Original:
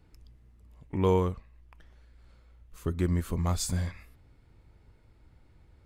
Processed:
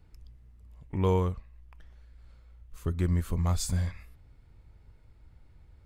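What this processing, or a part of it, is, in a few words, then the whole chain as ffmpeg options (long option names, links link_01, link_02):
low shelf boost with a cut just above: -af "lowshelf=frequency=93:gain=7,equalizer=frequency=310:width_type=o:width=0.94:gain=-3,volume=-1.5dB"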